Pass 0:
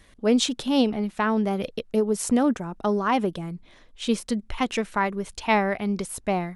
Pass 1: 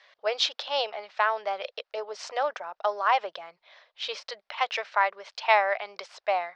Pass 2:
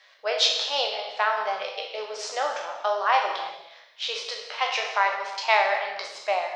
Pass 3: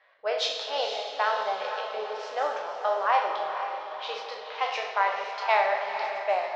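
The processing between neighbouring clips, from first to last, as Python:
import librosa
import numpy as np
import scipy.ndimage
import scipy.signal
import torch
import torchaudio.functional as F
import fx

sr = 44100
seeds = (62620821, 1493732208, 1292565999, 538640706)

y1 = scipy.signal.sosfilt(scipy.signal.ellip(3, 1.0, 40, [600.0, 5000.0], 'bandpass', fs=sr, output='sos'), x)
y1 = y1 * 10.0 ** (2.0 / 20.0)
y2 = fx.spec_trails(y1, sr, decay_s=0.41)
y2 = fx.high_shelf(y2, sr, hz=5600.0, db=10.5)
y2 = fx.rev_gated(y2, sr, seeds[0], gate_ms=410, shape='falling', drr_db=3.5)
y2 = y2 * 10.0 ** (-1.5 / 20.0)
y3 = fx.env_lowpass(y2, sr, base_hz=2300.0, full_db=-20.0)
y3 = fx.high_shelf(y3, sr, hz=2100.0, db=-10.5)
y3 = fx.echo_diffused(y3, sr, ms=485, feedback_pct=48, wet_db=-8)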